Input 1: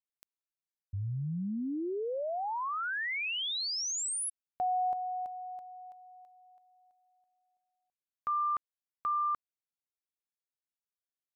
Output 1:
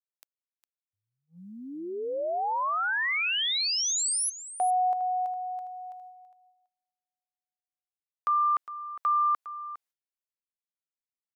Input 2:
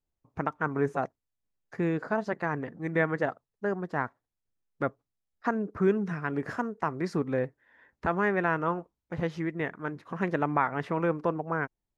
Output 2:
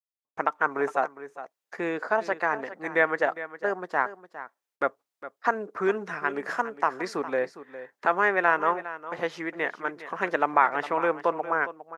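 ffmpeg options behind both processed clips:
-af "highpass=530,agate=range=0.0224:threshold=0.00224:ratio=16:release=417:detection=rms,aecho=1:1:408:0.2,volume=2.11"

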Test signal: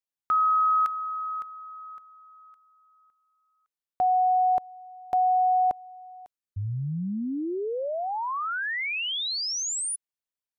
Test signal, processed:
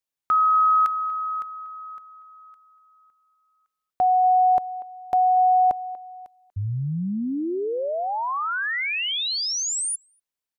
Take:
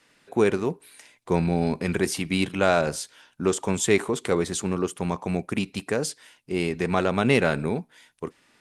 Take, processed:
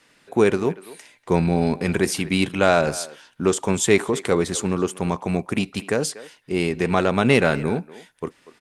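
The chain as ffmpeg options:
-filter_complex "[0:a]asplit=2[s0][s1];[s1]adelay=240,highpass=300,lowpass=3400,asoftclip=type=hard:threshold=0.2,volume=0.141[s2];[s0][s2]amix=inputs=2:normalize=0,volume=1.5"

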